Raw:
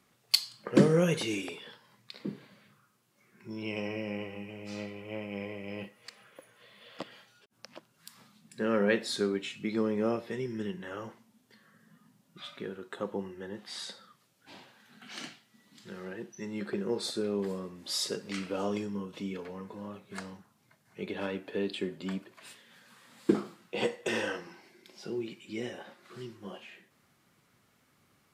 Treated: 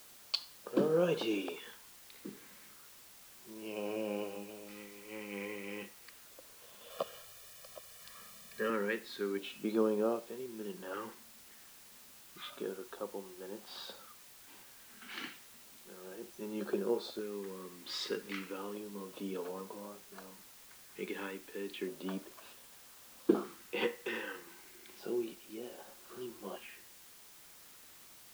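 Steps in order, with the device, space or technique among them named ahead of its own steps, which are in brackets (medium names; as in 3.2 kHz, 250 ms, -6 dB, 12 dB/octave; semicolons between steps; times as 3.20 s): shortwave radio (band-pass 300–2900 Hz; tremolo 0.72 Hz, depth 63%; LFO notch square 0.32 Hz 640–2000 Hz; white noise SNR 16 dB); 6.90–8.70 s: comb 1.7 ms, depth 90%; trim +2.5 dB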